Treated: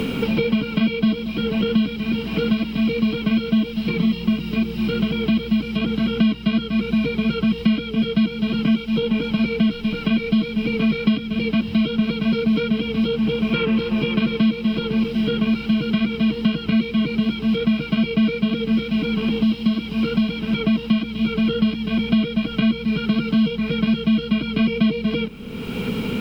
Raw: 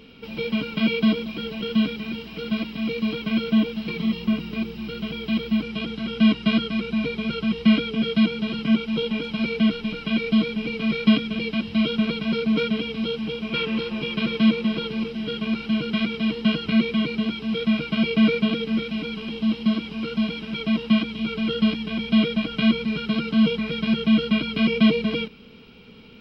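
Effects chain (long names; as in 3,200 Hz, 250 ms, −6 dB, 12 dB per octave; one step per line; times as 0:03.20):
low-shelf EQ 230 Hz +8 dB
bit-depth reduction 10 bits, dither none
multiband upward and downward compressor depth 100%
level −1.5 dB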